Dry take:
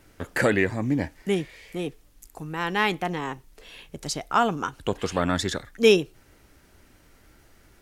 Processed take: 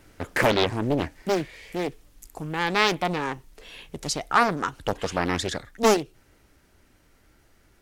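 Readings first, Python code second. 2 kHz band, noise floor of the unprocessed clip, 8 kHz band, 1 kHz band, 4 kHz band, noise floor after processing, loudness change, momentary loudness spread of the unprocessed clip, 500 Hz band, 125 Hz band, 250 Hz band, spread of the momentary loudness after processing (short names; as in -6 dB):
+1.0 dB, -57 dBFS, +2.5 dB, +2.5 dB, +1.5 dB, -61 dBFS, 0.0 dB, 15 LU, -1.0 dB, -1.0 dB, -1.5 dB, 14 LU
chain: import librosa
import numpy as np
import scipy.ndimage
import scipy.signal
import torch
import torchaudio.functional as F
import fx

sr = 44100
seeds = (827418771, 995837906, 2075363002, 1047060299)

y = fx.rider(x, sr, range_db=4, speed_s=2.0)
y = fx.doppler_dist(y, sr, depth_ms=1.0)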